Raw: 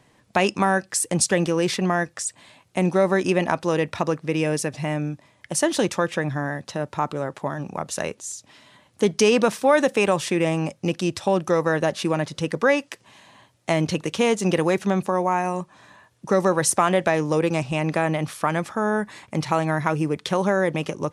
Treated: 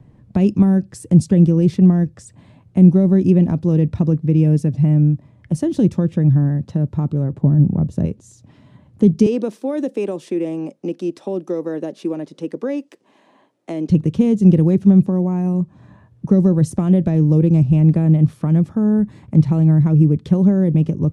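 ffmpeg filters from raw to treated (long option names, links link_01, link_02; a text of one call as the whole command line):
ffmpeg -i in.wav -filter_complex "[0:a]asettb=1/sr,asplit=3[link_01][link_02][link_03];[link_01]atrim=end=7.324[link_04];[link_02]atrim=start=7.32:end=8.06,asetpts=PTS-STARTPTS,afade=type=in:duration=0.004:curve=qsin,afade=type=out:start_time=0.736:duration=0.004:curve=qsin,tiltshelf=frequency=820:gain=6[link_05];[link_03]atrim=start=8.056[link_06];[link_04][link_05]acrossfade=duration=0.004:curve1=hsin:curve2=qsin[link_07];[link_07][link_06]acrossfade=duration=0.004:curve1=qsin:curve2=hsin,asettb=1/sr,asplit=3[link_08][link_09][link_10];[link_08]atrim=end=9.264[link_11];[link_09]atrim=start=9.26:end=13.9,asetpts=PTS-STARTPTS,afade=type=in:duration=0.004:curve=qsin,afade=type=out:start_time=4.636:duration=0.004:curve=qsin,highpass=frequency=310:width=0.5412,highpass=frequency=310:width=1.3066[link_12];[link_10]atrim=start=13.896[link_13];[link_11][link_12]acrossfade=duration=0.004:curve1=hsin:curve2=qsin[link_14];[link_14][link_13]acrossfade=duration=0.004:curve1=qsin:curve2=hsin,tiltshelf=frequency=930:gain=8,acrossover=split=440|3000[link_15][link_16][link_17];[link_16]acompressor=threshold=-42dB:ratio=2[link_18];[link_15][link_18][link_17]amix=inputs=3:normalize=0,bass=frequency=250:gain=13,treble=frequency=4000:gain=-4,volume=-3dB" out.wav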